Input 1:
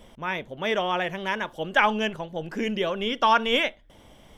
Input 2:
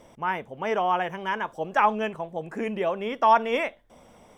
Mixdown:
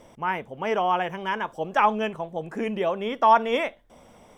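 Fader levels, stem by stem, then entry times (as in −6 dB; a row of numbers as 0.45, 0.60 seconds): −19.0, +1.0 decibels; 0.00, 0.00 seconds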